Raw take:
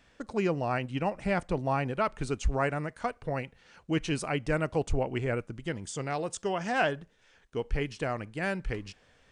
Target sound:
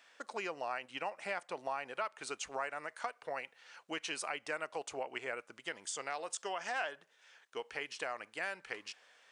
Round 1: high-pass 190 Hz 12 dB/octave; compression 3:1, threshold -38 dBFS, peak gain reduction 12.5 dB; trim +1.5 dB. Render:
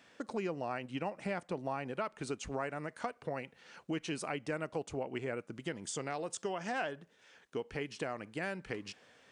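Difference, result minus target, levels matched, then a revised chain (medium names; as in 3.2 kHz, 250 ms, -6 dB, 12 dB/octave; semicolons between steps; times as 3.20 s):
250 Hz band +10.5 dB
high-pass 750 Hz 12 dB/octave; compression 3:1, threshold -38 dBFS, peak gain reduction 10.5 dB; trim +1.5 dB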